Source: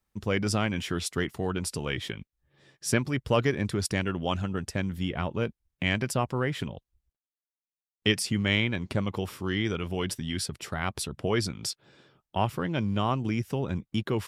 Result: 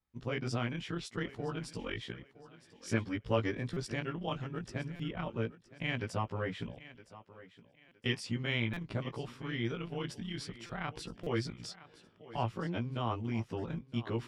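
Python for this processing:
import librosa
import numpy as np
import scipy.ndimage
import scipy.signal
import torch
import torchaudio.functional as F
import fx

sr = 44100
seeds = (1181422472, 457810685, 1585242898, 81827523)

p1 = fx.frame_reverse(x, sr, frame_ms=35.0)
p2 = scipy.signal.sosfilt(scipy.signal.bessel(2, 4600.0, 'lowpass', norm='mag', fs=sr, output='sos'), p1)
p3 = p2 + fx.echo_thinned(p2, sr, ms=965, feedback_pct=31, hz=170.0, wet_db=-16.5, dry=0)
p4 = fx.buffer_glitch(p3, sr, at_s=(3.73, 4.96, 7.88, 8.73, 10.66, 11.23), block=256, repeats=5)
y = p4 * librosa.db_to_amplitude(-4.5)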